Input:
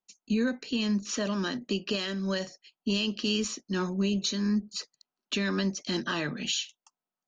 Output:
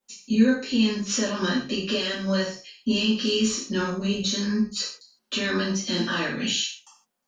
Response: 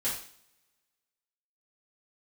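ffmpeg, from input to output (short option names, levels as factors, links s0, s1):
-filter_complex "[0:a]alimiter=level_in=1.41:limit=0.0631:level=0:latency=1:release=366,volume=0.708[s0];[1:a]atrim=start_sample=2205,afade=t=out:st=0.22:d=0.01,atrim=end_sample=10143[s1];[s0][s1]afir=irnorm=-1:irlink=0,volume=2.11"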